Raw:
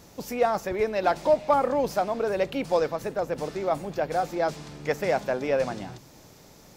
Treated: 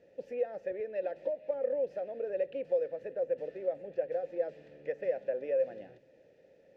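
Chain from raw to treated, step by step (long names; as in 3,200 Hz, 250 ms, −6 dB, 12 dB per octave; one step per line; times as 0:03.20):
spectral tilt −2.5 dB per octave
downward compressor 6 to 1, threshold −23 dBFS, peak gain reduction 9.5 dB
formant filter e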